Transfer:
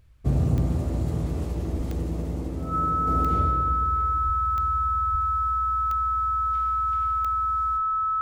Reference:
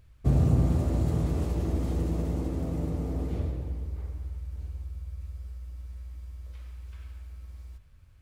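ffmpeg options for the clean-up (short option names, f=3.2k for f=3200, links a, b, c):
-filter_complex "[0:a]adeclick=t=4,bandreject=f=1.3k:w=30,asplit=3[a][b][c];[a]afade=t=out:st=1.77:d=0.02[d];[b]highpass=f=140:w=0.5412,highpass=f=140:w=1.3066,afade=t=in:st=1.77:d=0.02,afade=t=out:st=1.89:d=0.02[e];[c]afade=t=in:st=1.89:d=0.02[f];[d][e][f]amix=inputs=3:normalize=0,asplit=3[g][h][i];[g]afade=t=out:st=4.25:d=0.02[j];[h]highpass=f=140:w=0.5412,highpass=f=140:w=1.3066,afade=t=in:st=4.25:d=0.02,afade=t=out:st=4.37:d=0.02[k];[i]afade=t=in:st=4.37:d=0.02[l];[j][k][l]amix=inputs=3:normalize=0,asplit=3[m][n][o];[m]afade=t=out:st=5.11:d=0.02[p];[n]highpass=f=140:w=0.5412,highpass=f=140:w=1.3066,afade=t=in:st=5.11:d=0.02,afade=t=out:st=5.23:d=0.02[q];[o]afade=t=in:st=5.23:d=0.02[r];[p][q][r]amix=inputs=3:normalize=0,asetnsamples=n=441:p=0,asendcmd='3.07 volume volume -5dB',volume=0dB"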